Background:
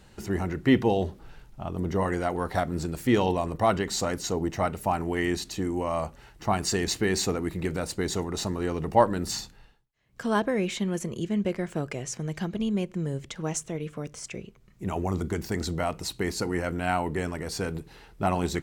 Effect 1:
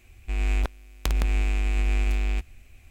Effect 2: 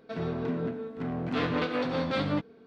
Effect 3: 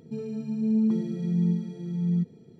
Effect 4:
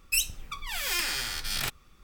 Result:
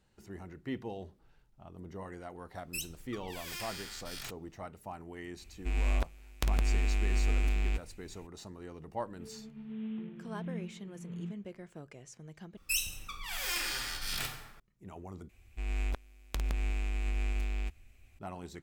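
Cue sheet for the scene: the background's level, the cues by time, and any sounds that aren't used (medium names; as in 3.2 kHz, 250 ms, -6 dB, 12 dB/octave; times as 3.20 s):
background -17.5 dB
2.61 s: add 4 -13 dB + spectral gate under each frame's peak -60 dB strong
5.37 s: add 1 -5 dB
9.08 s: add 3 -15.5 dB + CVSD coder 16 kbps
12.57 s: replace with 4 -6.5 dB + plate-style reverb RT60 1.2 s, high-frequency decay 0.55×, DRR 2 dB
15.29 s: replace with 1 -9 dB
not used: 2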